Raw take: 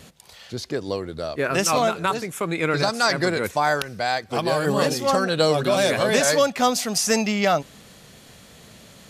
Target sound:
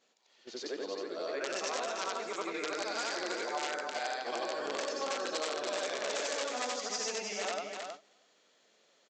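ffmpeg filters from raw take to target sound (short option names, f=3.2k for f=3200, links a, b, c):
-af "afftfilt=real='re':imag='-im':win_size=8192:overlap=0.75,aresample=16000,aeval=exprs='(mod(6.68*val(0)+1,2)-1)/6.68':c=same,aresample=44100,acompressor=threshold=-30dB:ratio=12,highpass=f=310:w=0.5412,highpass=f=310:w=1.3066,aecho=1:1:318|636|954:0.531|0.0796|0.0119,agate=range=-13dB:threshold=-42dB:ratio=16:detection=peak,volume=-2.5dB"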